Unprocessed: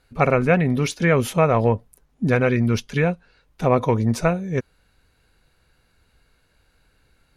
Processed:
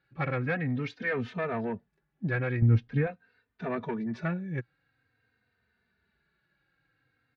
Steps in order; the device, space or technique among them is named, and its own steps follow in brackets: barber-pole flanger into a guitar amplifier (endless flanger 3.1 ms -0.46 Hz; soft clip -15 dBFS, distortion -17 dB; speaker cabinet 110–3800 Hz, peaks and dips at 120 Hz +4 dB, 200 Hz +3 dB, 570 Hz -6 dB, 1000 Hz -4 dB, 1700 Hz +8 dB, 3000 Hz -4 dB); 2.62–3.07 tilt -3 dB/oct; gain -7.5 dB

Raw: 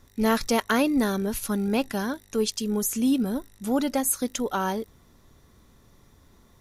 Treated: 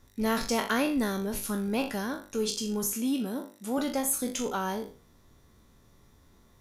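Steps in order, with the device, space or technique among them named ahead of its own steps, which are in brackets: spectral trails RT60 0.39 s; parallel distortion (in parallel at -13 dB: hard clip -23.5 dBFS, distortion -9 dB); 2.93–3.78 on the sum: HPF 200 Hz 12 dB/oct; gain -6.5 dB

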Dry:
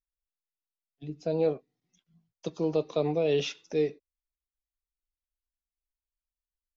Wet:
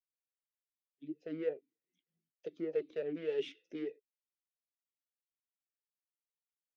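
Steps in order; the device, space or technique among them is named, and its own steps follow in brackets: talk box (tube stage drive 29 dB, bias 0.8; vowel sweep e-i 3.3 Hz); gain +5 dB

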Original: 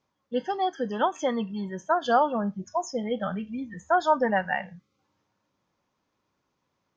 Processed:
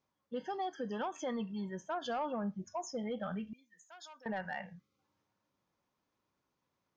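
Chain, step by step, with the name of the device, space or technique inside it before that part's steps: soft clipper into limiter (soft clip -15.5 dBFS, distortion -18 dB; limiter -23.5 dBFS, peak gain reduction 7.5 dB); 3.53–4.26 differentiator; gain -7 dB

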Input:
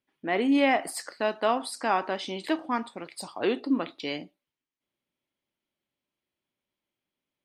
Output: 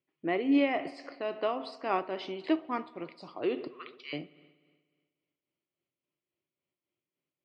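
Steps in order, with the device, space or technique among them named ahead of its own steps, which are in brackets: 3.67–4.13 Chebyshev high-pass 1100 Hz, order 5; combo amplifier with spring reverb and tremolo (spring tank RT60 1.7 s, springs 60 ms, chirp 40 ms, DRR 15.5 dB; tremolo 3.6 Hz, depth 46%; speaker cabinet 89–4300 Hz, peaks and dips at 150 Hz +6 dB, 220 Hz -8 dB, 350 Hz +5 dB, 860 Hz -7 dB, 1600 Hz -9 dB, 3600 Hz -8 dB); gain -1 dB

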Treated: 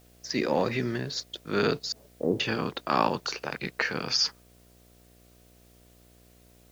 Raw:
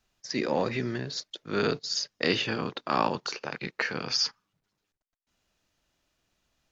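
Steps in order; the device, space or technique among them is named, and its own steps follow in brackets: 1.92–2.4 steep low-pass 850 Hz 36 dB/oct; video cassette with head-switching buzz (buzz 60 Hz, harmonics 12, -60 dBFS -4 dB/oct; white noise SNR 32 dB); gain +1.5 dB

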